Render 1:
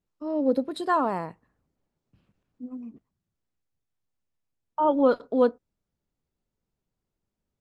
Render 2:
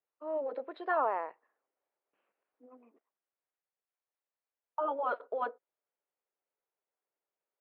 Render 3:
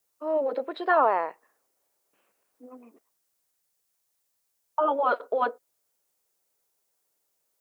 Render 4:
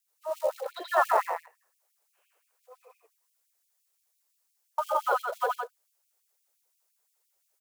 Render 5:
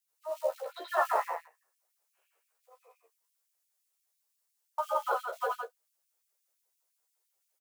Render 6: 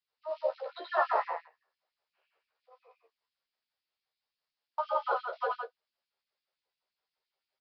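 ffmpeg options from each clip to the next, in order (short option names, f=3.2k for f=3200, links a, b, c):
-af "lowpass=f=2.5k:w=0.5412,lowpass=f=2.5k:w=1.3066,afftfilt=real='re*lt(hypot(re,im),0.631)':imag='im*lt(hypot(re,im),0.631)':win_size=1024:overlap=0.75,highpass=f=460:w=0.5412,highpass=f=460:w=1.3066,volume=-2.5dB"
-af "bass=f=250:g=6,treble=f=4k:g=13,volume=8.5dB"
-af "aecho=1:1:81.63|166.2:0.891|0.562,acrusher=bits=6:mode=log:mix=0:aa=0.000001,afftfilt=real='re*gte(b*sr/1024,340*pow(2300/340,0.5+0.5*sin(2*PI*5.8*pts/sr)))':imag='im*gte(b*sr/1024,340*pow(2300/340,0.5+0.5*sin(2*PI*5.8*pts/sr)))':win_size=1024:overlap=0.75,volume=-2.5dB"
-af "aecho=1:1:13|33:0.708|0.178,volume=-6dB"
-af "aresample=11025,aresample=44100"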